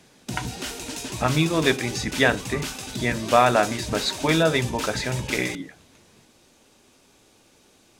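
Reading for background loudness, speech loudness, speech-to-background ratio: -31.5 LUFS, -23.0 LUFS, 8.5 dB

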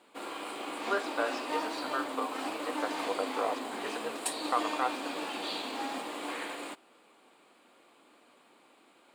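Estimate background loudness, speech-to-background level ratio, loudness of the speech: -36.5 LUFS, 0.0 dB, -36.5 LUFS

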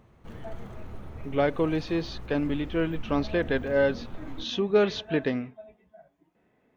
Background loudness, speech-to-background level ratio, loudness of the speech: -44.0 LUFS, 16.5 dB, -27.5 LUFS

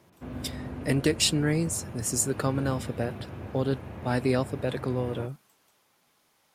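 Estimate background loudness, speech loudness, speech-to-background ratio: -39.5 LUFS, -28.5 LUFS, 11.0 dB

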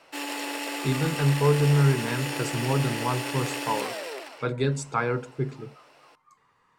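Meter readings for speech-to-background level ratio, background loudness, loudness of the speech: 5.0 dB, -31.5 LUFS, -26.5 LUFS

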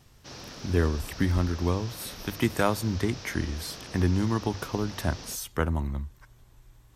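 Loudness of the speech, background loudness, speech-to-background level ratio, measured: -29.0 LUFS, -42.5 LUFS, 13.5 dB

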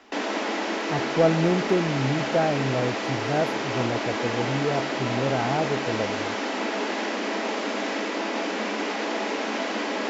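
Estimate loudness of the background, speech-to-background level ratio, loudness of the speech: -27.5 LUFS, 0.5 dB, -27.0 LUFS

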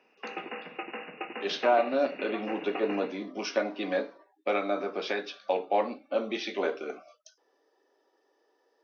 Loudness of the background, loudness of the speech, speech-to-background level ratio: -39.5 LUFS, -30.5 LUFS, 9.0 dB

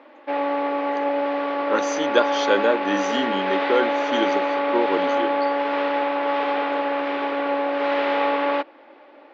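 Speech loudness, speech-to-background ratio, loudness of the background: -25.0 LUFS, -2.0 dB, -23.0 LUFS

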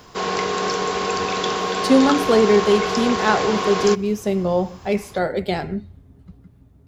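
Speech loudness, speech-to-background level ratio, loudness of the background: -19.5 LUFS, 3.0 dB, -22.5 LUFS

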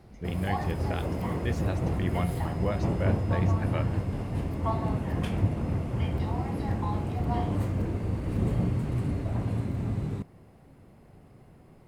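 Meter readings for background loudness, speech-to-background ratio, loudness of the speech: -30.0 LUFS, -5.0 dB, -35.0 LUFS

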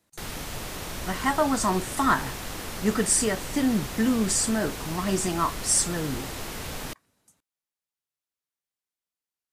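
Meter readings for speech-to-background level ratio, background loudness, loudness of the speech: 9.5 dB, -35.0 LUFS, -25.5 LUFS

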